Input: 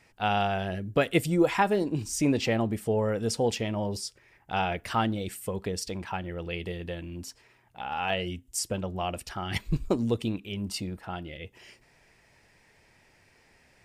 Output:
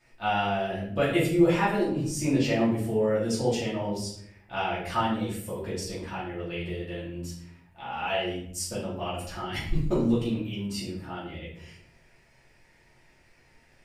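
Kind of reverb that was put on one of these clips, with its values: simulated room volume 110 m³, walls mixed, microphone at 2.6 m; trim -10 dB

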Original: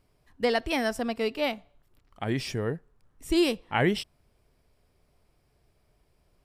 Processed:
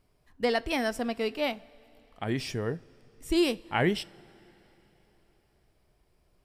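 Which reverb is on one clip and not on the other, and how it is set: two-slope reverb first 0.25 s, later 3.9 s, from -18 dB, DRR 16.5 dB; trim -1.5 dB

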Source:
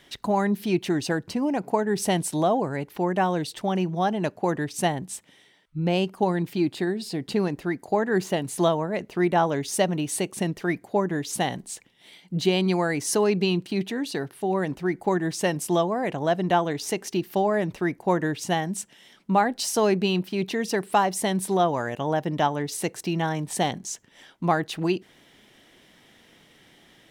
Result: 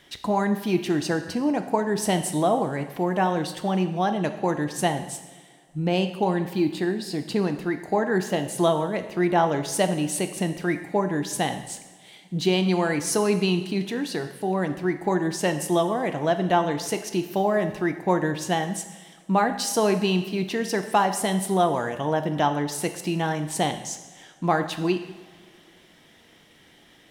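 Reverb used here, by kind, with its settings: two-slope reverb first 0.98 s, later 3 s, from -18 dB, DRR 7.5 dB

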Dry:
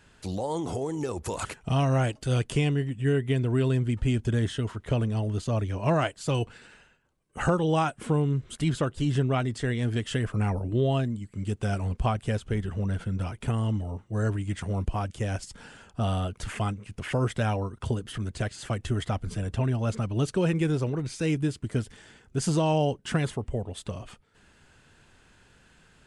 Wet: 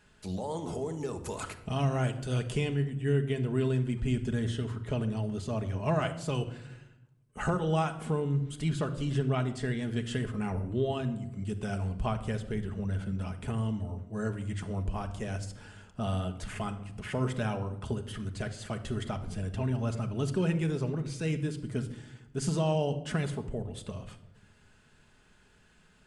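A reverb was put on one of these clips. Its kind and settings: simulated room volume 2900 m³, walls furnished, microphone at 1.4 m; trim -5.5 dB

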